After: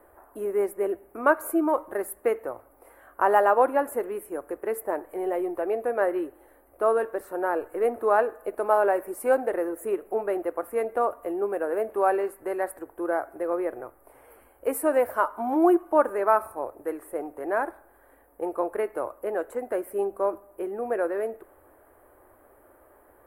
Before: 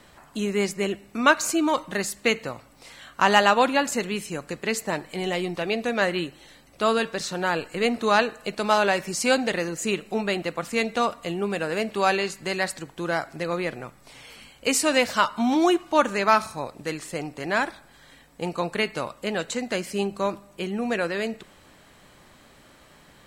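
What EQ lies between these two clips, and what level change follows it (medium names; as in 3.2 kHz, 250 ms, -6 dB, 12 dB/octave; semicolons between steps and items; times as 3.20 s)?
FFT filter 100 Hz 0 dB, 160 Hz -22 dB, 340 Hz +7 dB, 650 Hz +7 dB, 1.6 kHz -1 dB, 3.8 kHz -29 dB, 6.8 kHz -24 dB, 11 kHz +8 dB; -5.5 dB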